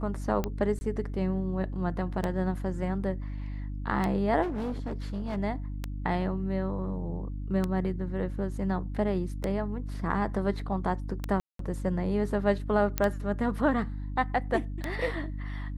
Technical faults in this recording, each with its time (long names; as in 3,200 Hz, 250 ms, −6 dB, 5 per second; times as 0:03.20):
mains hum 50 Hz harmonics 6 −35 dBFS
scratch tick 33 1/3 rpm −16 dBFS
0:00.79–0:00.81: drop-out 20 ms
0:04.42–0:05.38: clipping −28.5 dBFS
0:11.40–0:11.59: drop-out 193 ms
0:12.98: click −11 dBFS